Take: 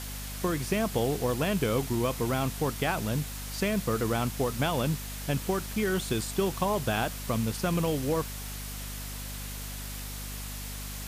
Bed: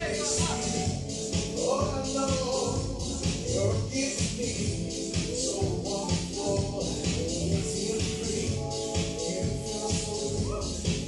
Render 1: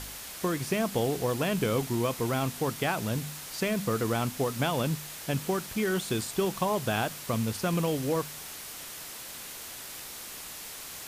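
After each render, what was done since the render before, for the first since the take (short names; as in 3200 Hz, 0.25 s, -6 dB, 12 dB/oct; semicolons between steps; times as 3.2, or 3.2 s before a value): de-hum 50 Hz, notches 5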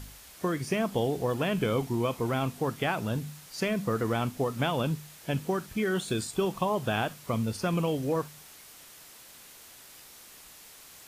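noise print and reduce 9 dB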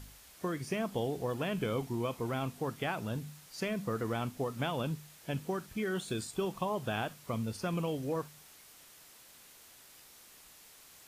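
gain -6 dB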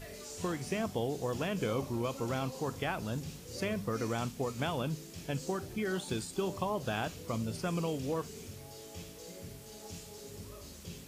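add bed -17.5 dB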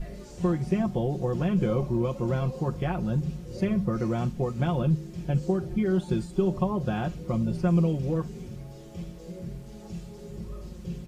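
tilt -3.5 dB/oct; comb 5.6 ms, depth 74%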